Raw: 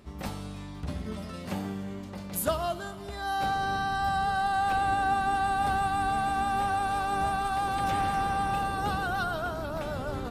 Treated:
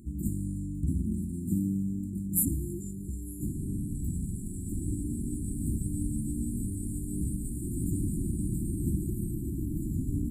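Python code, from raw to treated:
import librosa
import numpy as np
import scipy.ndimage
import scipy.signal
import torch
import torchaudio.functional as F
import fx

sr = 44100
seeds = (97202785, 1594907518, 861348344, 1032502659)

y = fx.brickwall_bandstop(x, sr, low_hz=370.0, high_hz=7000.0)
y = y * librosa.db_to_amplitude(6.0)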